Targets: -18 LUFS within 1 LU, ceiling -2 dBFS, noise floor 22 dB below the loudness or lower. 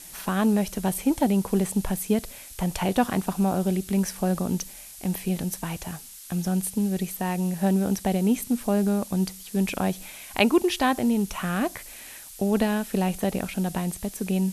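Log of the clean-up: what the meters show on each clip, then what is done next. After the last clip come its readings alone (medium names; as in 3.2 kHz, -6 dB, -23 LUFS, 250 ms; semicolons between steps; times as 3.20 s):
noise floor -44 dBFS; noise floor target -48 dBFS; loudness -26.0 LUFS; peak level -7.0 dBFS; loudness target -18.0 LUFS
-> noise print and reduce 6 dB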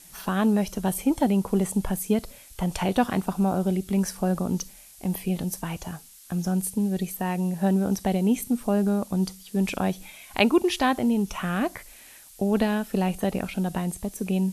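noise floor -49 dBFS; loudness -26.0 LUFS; peak level -7.0 dBFS; loudness target -18.0 LUFS
-> trim +8 dB; peak limiter -2 dBFS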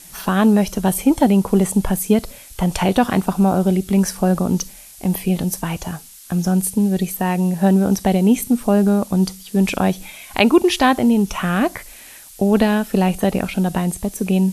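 loudness -18.0 LUFS; peak level -2.0 dBFS; noise floor -41 dBFS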